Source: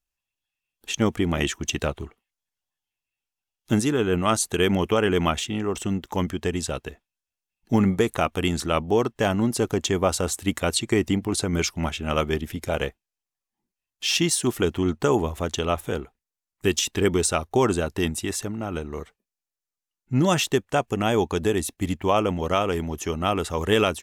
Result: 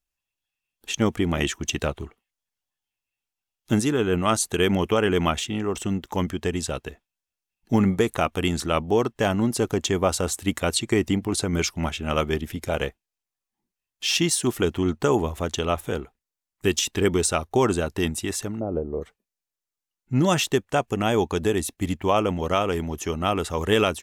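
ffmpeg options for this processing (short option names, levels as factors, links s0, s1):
-filter_complex "[0:a]asplit=3[s0][s1][s2];[s0]afade=t=out:st=18.59:d=0.02[s3];[s1]lowpass=f=540:t=q:w=2.1,afade=t=in:st=18.59:d=0.02,afade=t=out:st=19.01:d=0.02[s4];[s2]afade=t=in:st=19.01:d=0.02[s5];[s3][s4][s5]amix=inputs=3:normalize=0"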